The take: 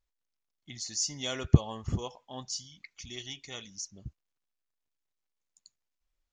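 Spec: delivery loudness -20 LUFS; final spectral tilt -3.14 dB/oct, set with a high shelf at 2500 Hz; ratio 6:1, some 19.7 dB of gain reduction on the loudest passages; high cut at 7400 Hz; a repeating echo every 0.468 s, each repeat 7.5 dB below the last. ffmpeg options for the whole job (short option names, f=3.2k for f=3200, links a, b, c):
-af "lowpass=7.4k,highshelf=f=2.5k:g=-3,acompressor=threshold=-36dB:ratio=6,aecho=1:1:468|936|1404|1872|2340:0.422|0.177|0.0744|0.0312|0.0131,volume=22.5dB"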